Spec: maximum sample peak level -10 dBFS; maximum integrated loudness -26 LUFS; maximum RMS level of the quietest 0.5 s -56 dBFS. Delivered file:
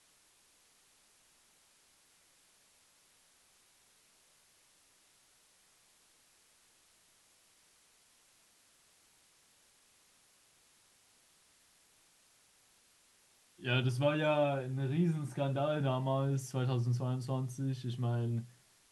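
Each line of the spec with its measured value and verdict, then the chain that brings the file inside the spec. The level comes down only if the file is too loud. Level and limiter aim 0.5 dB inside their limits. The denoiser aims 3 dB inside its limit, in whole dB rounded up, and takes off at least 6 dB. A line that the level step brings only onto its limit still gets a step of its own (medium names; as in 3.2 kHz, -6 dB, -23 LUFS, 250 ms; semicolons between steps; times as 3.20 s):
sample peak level -18.5 dBFS: pass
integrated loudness -34.0 LUFS: pass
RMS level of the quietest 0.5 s -68 dBFS: pass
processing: none needed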